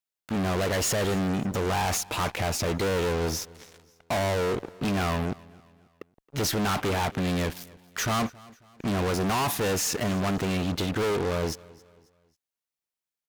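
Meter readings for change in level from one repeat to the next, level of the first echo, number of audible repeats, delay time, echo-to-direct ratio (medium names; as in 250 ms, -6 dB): -8.0 dB, -23.0 dB, 2, 271 ms, -22.0 dB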